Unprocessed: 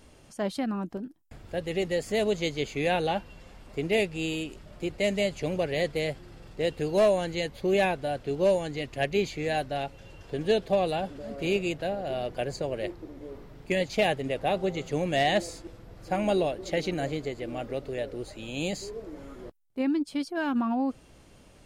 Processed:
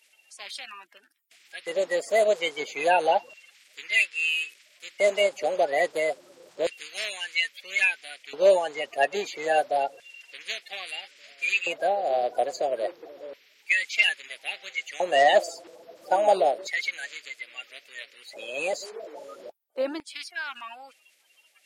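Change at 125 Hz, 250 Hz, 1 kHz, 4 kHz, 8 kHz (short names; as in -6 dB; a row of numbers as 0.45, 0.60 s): under -20 dB, -13.0 dB, +5.5 dB, +4.0 dB, +3.5 dB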